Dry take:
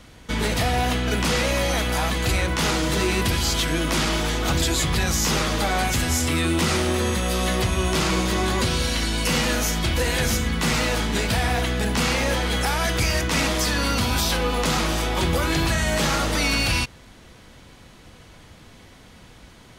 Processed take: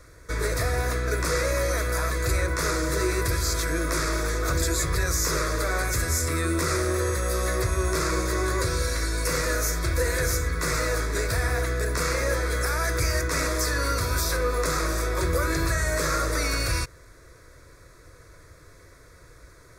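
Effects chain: fixed phaser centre 810 Hz, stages 6

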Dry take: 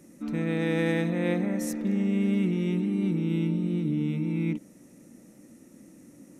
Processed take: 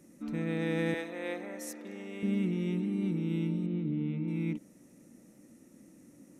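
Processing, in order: 0.94–2.23 Bessel high-pass 450 Hz, order 4; 3.66–4.28 air absorption 250 m; gain -5 dB

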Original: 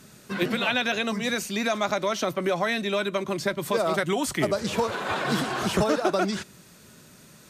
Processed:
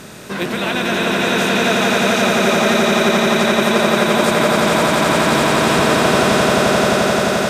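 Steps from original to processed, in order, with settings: per-bin compression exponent 0.6; swelling echo 87 ms, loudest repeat 8, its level -4 dB

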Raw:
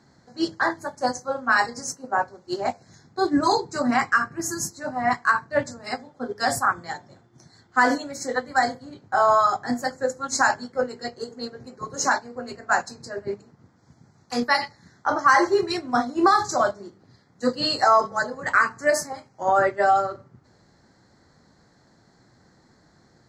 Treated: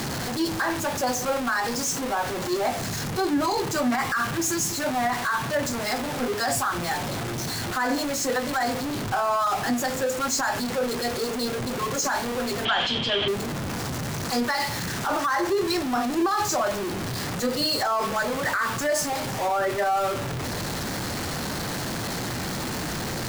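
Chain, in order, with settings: zero-crossing step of -21.5 dBFS; limiter -14.5 dBFS, peak gain reduction 10.5 dB; 12.65–13.28 synth low-pass 3200 Hz, resonance Q 15; gain -2.5 dB

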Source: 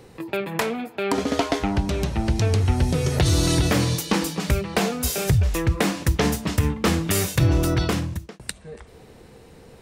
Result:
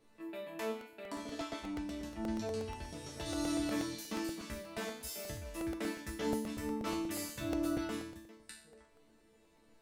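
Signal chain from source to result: resonator bank A3 sus4, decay 0.53 s; crackling interface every 0.12 s, samples 64, repeat, from 0.81; gain +2.5 dB

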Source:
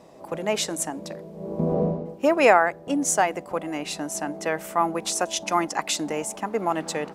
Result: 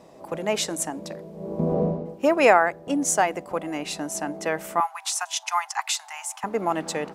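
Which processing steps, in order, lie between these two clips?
4.8–6.44 steep high-pass 760 Hz 72 dB/oct

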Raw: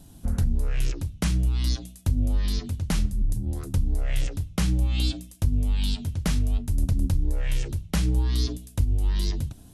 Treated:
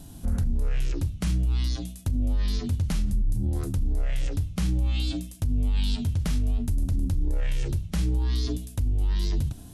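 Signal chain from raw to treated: harmonic-percussive split harmonic +7 dB; limiter -18.5 dBFS, peak gain reduction 11.5 dB

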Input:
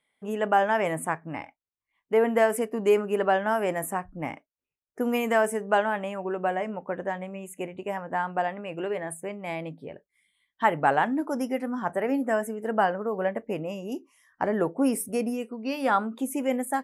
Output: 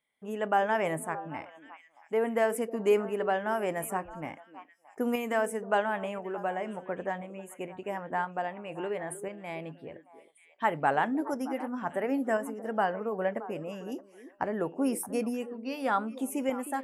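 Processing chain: tremolo saw up 0.97 Hz, depth 40%; delay with a stepping band-pass 0.311 s, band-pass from 370 Hz, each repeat 1.4 oct, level -10.5 dB; gain -2.5 dB

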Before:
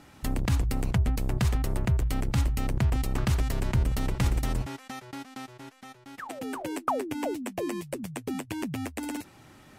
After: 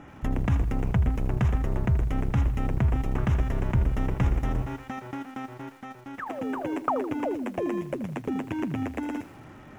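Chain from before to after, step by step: in parallel at +1.5 dB: compressor 6:1, threshold -39 dBFS, peak gain reduction 17.5 dB; on the sum: running mean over 10 samples; lo-fi delay 80 ms, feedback 55%, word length 8-bit, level -13 dB

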